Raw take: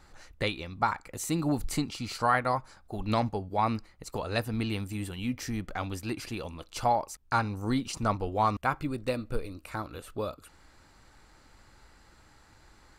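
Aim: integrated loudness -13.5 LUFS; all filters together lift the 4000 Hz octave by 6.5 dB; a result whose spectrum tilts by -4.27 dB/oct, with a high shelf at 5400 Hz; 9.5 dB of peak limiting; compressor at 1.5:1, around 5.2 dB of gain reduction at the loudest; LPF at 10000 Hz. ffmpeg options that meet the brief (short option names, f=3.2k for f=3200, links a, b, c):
-af "lowpass=10k,equalizer=f=4k:t=o:g=6.5,highshelf=f=5.4k:g=3.5,acompressor=threshold=-35dB:ratio=1.5,volume=23.5dB,alimiter=limit=-1.5dB:level=0:latency=1"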